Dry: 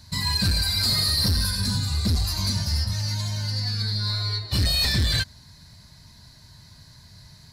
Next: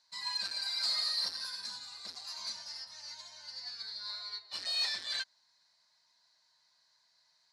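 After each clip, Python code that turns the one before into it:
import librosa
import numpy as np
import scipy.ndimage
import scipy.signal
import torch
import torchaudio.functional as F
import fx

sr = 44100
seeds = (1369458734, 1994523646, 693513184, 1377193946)

y = scipy.signal.sosfilt(scipy.signal.cheby1(2, 1.0, [790.0, 6300.0], 'bandpass', fs=sr, output='sos'), x)
y = fx.upward_expand(y, sr, threshold_db=-41.0, expansion=1.5)
y = y * librosa.db_to_amplitude(-8.0)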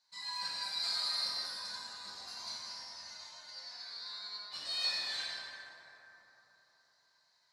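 y = fx.rev_plate(x, sr, seeds[0], rt60_s=3.7, hf_ratio=0.4, predelay_ms=0, drr_db=-7.0)
y = y * librosa.db_to_amplitude(-7.0)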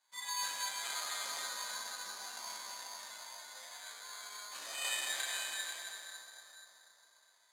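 y = x + 10.0 ** (-7.0 / 20.0) * np.pad(x, (int(490 * sr / 1000.0), 0))[:len(x)]
y = (np.kron(scipy.signal.resample_poly(y, 1, 8), np.eye(8)[0]) * 8)[:len(y)]
y = fx.bandpass_edges(y, sr, low_hz=320.0, high_hz=7500.0)
y = y * librosa.db_to_amplitude(3.0)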